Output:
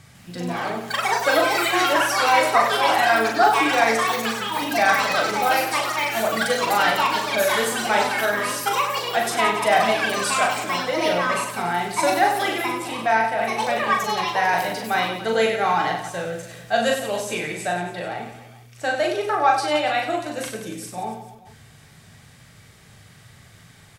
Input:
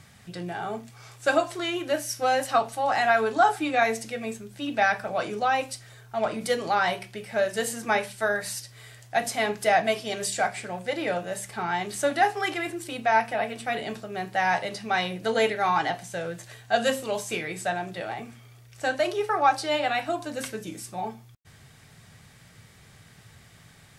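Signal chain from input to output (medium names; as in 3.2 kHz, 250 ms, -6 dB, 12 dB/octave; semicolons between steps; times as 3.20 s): ever faster or slower copies 152 ms, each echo +6 st, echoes 3; on a send: reverse bouncing-ball echo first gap 40 ms, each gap 1.4×, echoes 5; on the sum: trim +1.5 dB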